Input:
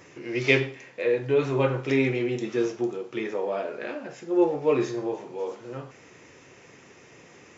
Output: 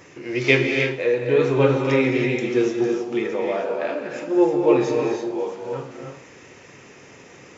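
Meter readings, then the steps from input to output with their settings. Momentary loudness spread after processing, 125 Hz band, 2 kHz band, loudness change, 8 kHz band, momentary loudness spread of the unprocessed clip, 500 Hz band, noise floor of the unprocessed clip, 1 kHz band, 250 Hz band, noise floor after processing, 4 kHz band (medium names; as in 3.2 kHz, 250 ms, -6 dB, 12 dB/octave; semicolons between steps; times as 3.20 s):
12 LU, +5.0 dB, +5.5 dB, +5.5 dB, no reading, 13 LU, +5.5 dB, -52 dBFS, +5.5 dB, +6.0 dB, -47 dBFS, +5.0 dB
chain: gated-style reverb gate 350 ms rising, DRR 2 dB; trim +3.5 dB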